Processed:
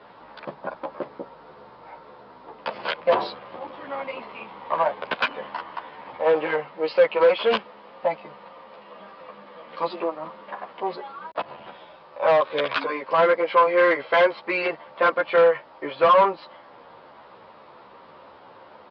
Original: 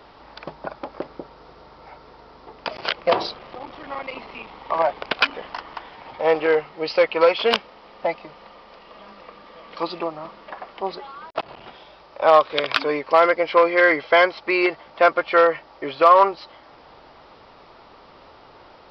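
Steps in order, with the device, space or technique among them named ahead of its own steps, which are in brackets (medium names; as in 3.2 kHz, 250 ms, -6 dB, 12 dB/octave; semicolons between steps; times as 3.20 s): barber-pole flanger into a guitar amplifier (endless flanger 11.8 ms -1.8 Hz; saturation -16 dBFS, distortion -11 dB; cabinet simulation 100–4100 Hz, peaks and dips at 200 Hz +5 dB, 530 Hz +6 dB, 1 kHz +6 dB, 1.6 kHz +4 dB)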